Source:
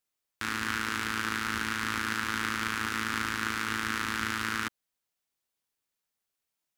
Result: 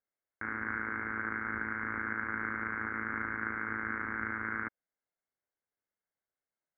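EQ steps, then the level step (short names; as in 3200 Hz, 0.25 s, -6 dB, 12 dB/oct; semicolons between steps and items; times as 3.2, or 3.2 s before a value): rippled Chebyshev low-pass 2200 Hz, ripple 6 dB; air absorption 80 m; 0.0 dB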